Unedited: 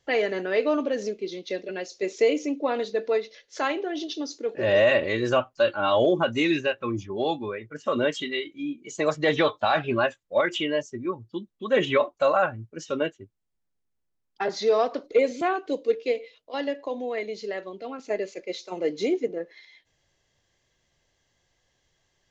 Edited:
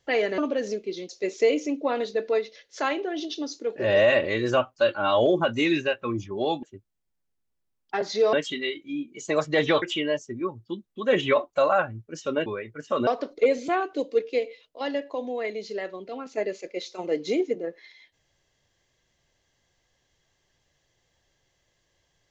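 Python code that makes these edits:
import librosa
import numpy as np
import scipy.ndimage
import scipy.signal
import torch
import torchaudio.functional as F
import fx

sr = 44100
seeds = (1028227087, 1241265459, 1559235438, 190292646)

y = fx.edit(x, sr, fx.cut(start_s=0.38, length_s=0.35),
    fx.cut(start_s=1.44, length_s=0.44),
    fx.swap(start_s=7.42, length_s=0.61, other_s=13.1, other_length_s=1.7),
    fx.cut(start_s=9.52, length_s=0.94), tone=tone)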